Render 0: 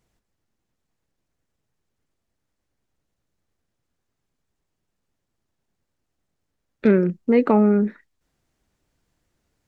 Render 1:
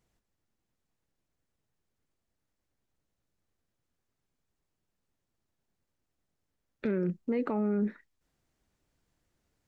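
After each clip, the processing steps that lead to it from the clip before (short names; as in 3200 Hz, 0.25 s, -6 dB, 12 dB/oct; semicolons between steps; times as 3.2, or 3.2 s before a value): limiter -17 dBFS, peak gain reduction 11.5 dB; gain -5 dB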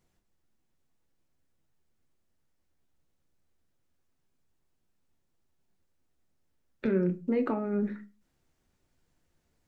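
reverb RT60 0.30 s, pre-delay 5 ms, DRR 7 dB; gain +1 dB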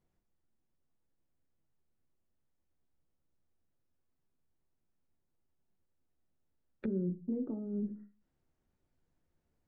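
treble ducked by the level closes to 330 Hz, closed at -29 dBFS; high shelf 2000 Hz -10.5 dB; gain -5 dB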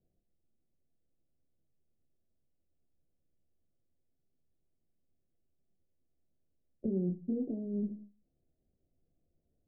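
switching dead time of 0.18 ms; steep low-pass 720 Hz 72 dB/oct; gain +1.5 dB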